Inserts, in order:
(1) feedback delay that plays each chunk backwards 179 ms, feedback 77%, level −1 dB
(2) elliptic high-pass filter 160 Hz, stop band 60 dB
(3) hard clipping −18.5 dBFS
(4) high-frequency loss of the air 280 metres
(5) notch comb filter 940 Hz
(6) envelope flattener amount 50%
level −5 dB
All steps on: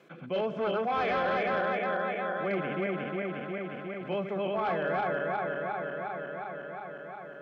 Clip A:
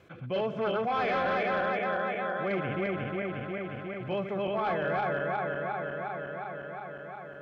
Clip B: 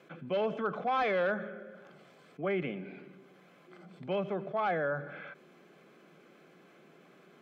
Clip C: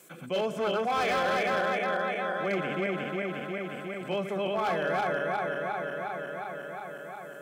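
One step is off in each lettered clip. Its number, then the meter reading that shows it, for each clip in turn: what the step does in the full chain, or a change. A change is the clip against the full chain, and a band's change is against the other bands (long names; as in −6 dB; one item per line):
2, 125 Hz band +2.5 dB
1, change in crest factor +3.5 dB
4, 4 kHz band +5.0 dB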